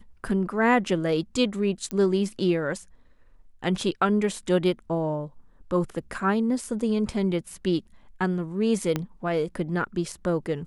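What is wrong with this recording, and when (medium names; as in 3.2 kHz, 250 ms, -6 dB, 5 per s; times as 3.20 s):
1.91 s: pop -15 dBFS
8.96 s: pop -12 dBFS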